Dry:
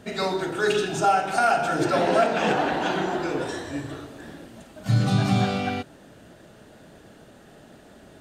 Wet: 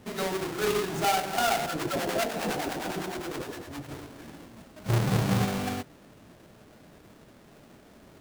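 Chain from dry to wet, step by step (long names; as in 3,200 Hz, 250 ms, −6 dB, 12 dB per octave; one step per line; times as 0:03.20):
each half-wave held at its own peak
0:01.66–0:03.89: two-band tremolo in antiphase 9.8 Hz, depth 70%, crossover 720 Hz
level −9 dB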